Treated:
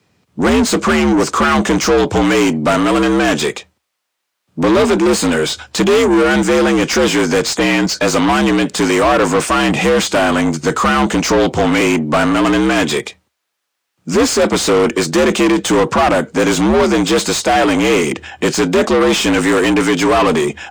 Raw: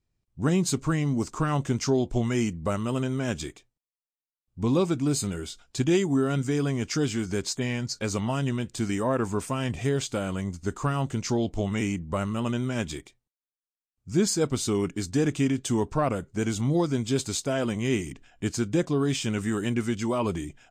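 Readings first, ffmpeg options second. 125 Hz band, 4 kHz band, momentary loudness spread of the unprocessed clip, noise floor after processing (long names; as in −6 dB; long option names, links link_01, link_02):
+4.5 dB, +17.0 dB, 5 LU, −74 dBFS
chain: -filter_complex "[0:a]afreqshift=66,asplit=2[link_01][link_02];[link_02]highpass=frequency=720:poles=1,volume=29dB,asoftclip=type=tanh:threshold=-11.5dB[link_03];[link_01][link_03]amix=inputs=2:normalize=0,lowpass=frequency=2800:poles=1,volume=-6dB,volume=7dB"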